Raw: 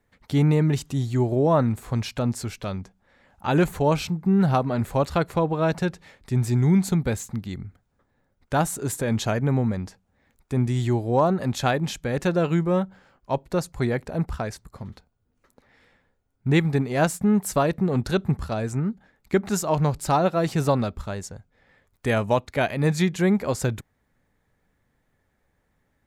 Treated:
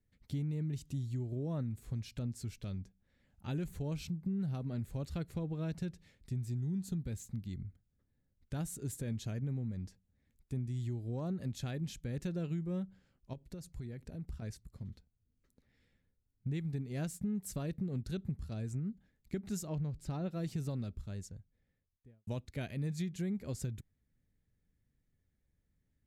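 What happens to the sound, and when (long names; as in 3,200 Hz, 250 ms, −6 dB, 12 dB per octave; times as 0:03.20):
0:06.56–0:07.04: Butterworth band-reject 2,200 Hz, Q 5.6
0:13.33–0:14.42: downward compressor 8 to 1, threshold −29 dBFS
0:19.67–0:20.31: low-pass filter 2,800 Hz 6 dB per octave
0:21.12–0:22.27: fade out and dull
whole clip: guitar amp tone stack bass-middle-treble 10-0-1; downward compressor, threshold −40 dBFS; low-shelf EQ 76 Hz −10 dB; level +8 dB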